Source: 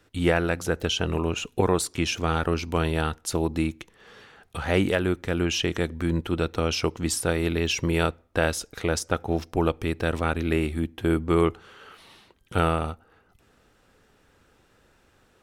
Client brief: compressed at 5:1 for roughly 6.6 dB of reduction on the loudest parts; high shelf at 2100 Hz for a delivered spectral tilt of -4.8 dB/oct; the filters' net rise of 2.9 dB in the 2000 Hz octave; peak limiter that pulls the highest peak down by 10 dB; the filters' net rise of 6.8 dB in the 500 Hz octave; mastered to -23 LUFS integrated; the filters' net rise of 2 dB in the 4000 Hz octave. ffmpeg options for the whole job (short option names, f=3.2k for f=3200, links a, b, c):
-af "equalizer=f=500:t=o:g=8.5,equalizer=f=2k:t=o:g=5.5,highshelf=f=2.1k:g=-7,equalizer=f=4k:t=o:g=7.5,acompressor=threshold=-19dB:ratio=5,volume=6.5dB,alimiter=limit=-11.5dB:level=0:latency=1"